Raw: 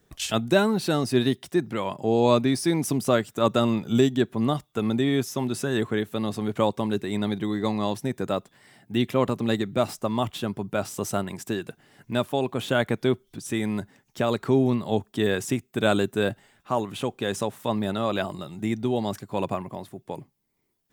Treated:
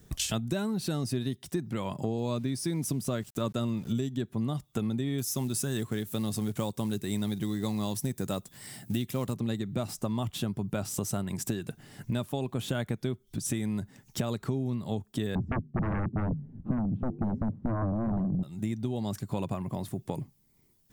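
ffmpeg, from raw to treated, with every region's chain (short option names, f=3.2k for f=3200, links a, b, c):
-filter_complex "[0:a]asettb=1/sr,asplit=3[a][b][c];[a]atrim=end=2.184[d];[b]atrim=start=2.18:end=3.93,asetpts=PTS-STARTPTS,afade=t=in:d=0.004:c=qsin,afade=t=out:st=1.746:d=0.004:c=qsin,bandreject=f=800:w=12,aeval=exprs='val(0)*gte(abs(val(0)),0.00668)':c=same[e];[c]atrim=start=3.926[f];[d][e]acrossfade=d=0.004:c1=hsin:c2=qsin[g];[g][f]acrossfade=d=0.004:c1=qsin:c2=hsin,asettb=1/sr,asplit=3[h][i][j];[h]atrim=end=5.184[k];[i]atrim=start=5.18:end=9.34,asetpts=PTS-STARTPTS,afade=t=in:d=0.004:c=qsin,afade=t=out:st=4.156:d=0.004:c=qsin,highshelf=f=5.5k:g=11.5,acrusher=bits=6:mode=log:mix=0:aa=0.000001[l];[j]atrim=start=9.336[m];[k][l]acrossfade=d=0.004:c1=hsin:c2=qsin[n];[n][m]acrossfade=d=0.004:c1=qsin:c2=hsin,asettb=1/sr,asplit=3[o][p][q];[o]atrim=end=15.354[r];[p]atrim=start=15.35:end=18.43,asetpts=PTS-STARTPTS,afade=t=in:d=0.004:c=qsin,afade=t=out:st=3.076:d=0.004:c=qsin,lowpass=f=240:t=q:w=1.8,flanger=delay=3.9:depth=6.7:regen=-82:speed=1.4:shape=triangular,aeval=exprs='0.158*sin(PI/2*6.31*val(0)/0.158)':c=same[s];[q]atrim=start=18.426[t];[r][s]acrossfade=d=0.004:c1=hsin:c2=qsin[u];[u][t]acrossfade=d=0.004:c1=qsin:c2=hsin,bass=f=250:g=11,treble=f=4k:g=7,acompressor=threshold=-31dB:ratio=6,volume=2dB"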